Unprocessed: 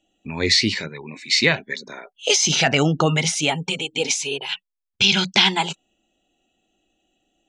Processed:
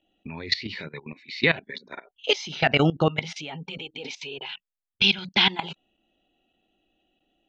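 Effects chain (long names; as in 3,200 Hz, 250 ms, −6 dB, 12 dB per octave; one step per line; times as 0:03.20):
low-pass filter 4,200 Hz 24 dB per octave
output level in coarse steps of 18 dB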